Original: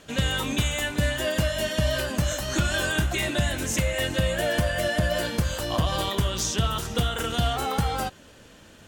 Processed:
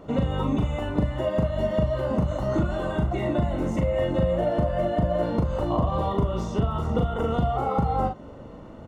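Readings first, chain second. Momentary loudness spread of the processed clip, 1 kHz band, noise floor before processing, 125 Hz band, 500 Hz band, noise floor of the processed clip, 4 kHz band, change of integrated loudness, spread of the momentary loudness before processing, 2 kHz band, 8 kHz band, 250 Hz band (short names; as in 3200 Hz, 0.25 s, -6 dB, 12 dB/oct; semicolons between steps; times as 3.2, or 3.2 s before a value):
3 LU, +2.5 dB, -50 dBFS, +1.0 dB, +3.5 dB, -42 dBFS, -15.0 dB, 0.0 dB, 2 LU, -12.0 dB, under -20 dB, +3.5 dB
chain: compressor, threshold -29 dBFS, peak gain reduction 10 dB; polynomial smoothing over 65 samples; doubler 40 ms -4 dB; gain +8.5 dB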